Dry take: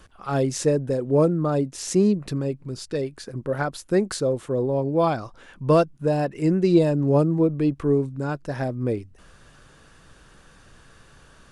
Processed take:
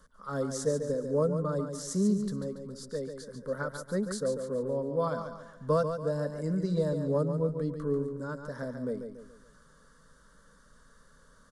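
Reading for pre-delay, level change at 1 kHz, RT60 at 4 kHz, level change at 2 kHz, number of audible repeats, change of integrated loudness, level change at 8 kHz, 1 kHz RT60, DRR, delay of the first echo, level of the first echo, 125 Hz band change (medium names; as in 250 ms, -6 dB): no reverb, -9.5 dB, no reverb, -8.5 dB, 4, -8.5 dB, -7.0 dB, no reverb, no reverb, 142 ms, -7.5 dB, -9.0 dB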